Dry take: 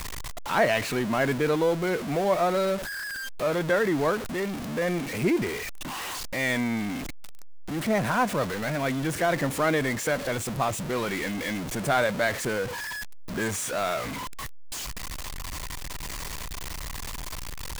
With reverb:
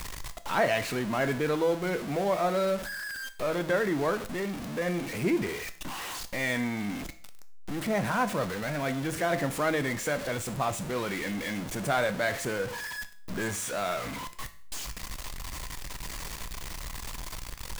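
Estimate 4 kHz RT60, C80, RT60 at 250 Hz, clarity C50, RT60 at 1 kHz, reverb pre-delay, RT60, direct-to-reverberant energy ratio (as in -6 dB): 0.50 s, 18.5 dB, 0.50 s, 15.0 dB, 0.50 s, 6 ms, 0.50 s, 10.0 dB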